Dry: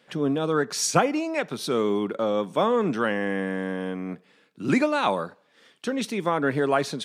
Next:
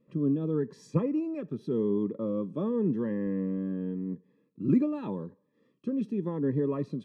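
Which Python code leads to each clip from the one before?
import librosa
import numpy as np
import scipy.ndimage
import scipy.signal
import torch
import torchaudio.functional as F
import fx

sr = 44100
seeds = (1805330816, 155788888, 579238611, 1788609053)

y = fx.wow_flutter(x, sr, seeds[0], rate_hz=2.1, depth_cents=19.0)
y = scipy.signal.lfilter(np.full(60, 1.0 / 60), 1.0, y)
y = fx.notch_cascade(y, sr, direction='rising', hz=0.88)
y = y * librosa.db_to_amplitude(1.0)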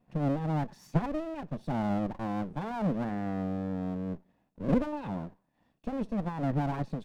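y = fx.lower_of_two(x, sr, delay_ms=1.1)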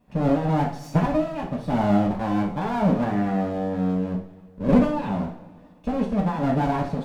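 y = fx.rev_double_slope(x, sr, seeds[1], early_s=0.45, late_s=2.4, knee_db=-21, drr_db=-1.5)
y = y * librosa.db_to_amplitude(6.0)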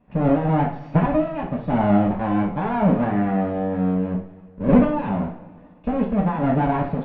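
y = scipy.signal.sosfilt(scipy.signal.butter(4, 2800.0, 'lowpass', fs=sr, output='sos'), x)
y = y * librosa.db_to_amplitude(2.5)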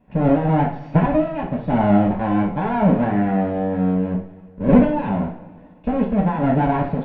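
y = fx.notch(x, sr, hz=1200.0, q=10.0)
y = y * librosa.db_to_amplitude(2.0)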